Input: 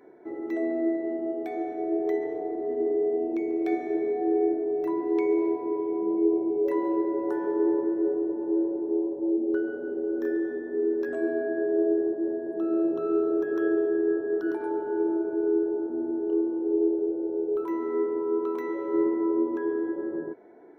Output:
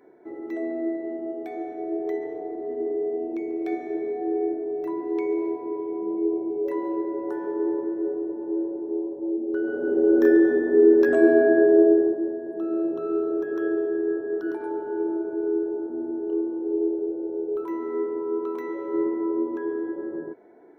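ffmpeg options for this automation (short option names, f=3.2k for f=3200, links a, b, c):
-af "volume=11dB,afade=t=in:st=9.53:d=0.58:silence=0.237137,afade=t=out:st=11.51:d=0.81:silence=0.266073"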